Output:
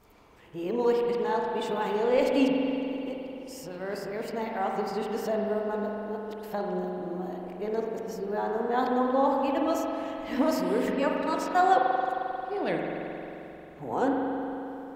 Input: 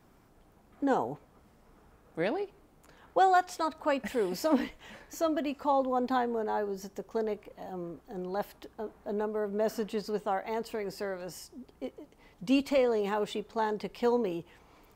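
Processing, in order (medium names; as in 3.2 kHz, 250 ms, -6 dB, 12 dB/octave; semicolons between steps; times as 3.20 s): reverse the whole clip; spring tank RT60 3.3 s, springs 44 ms, chirp 50 ms, DRR -0.5 dB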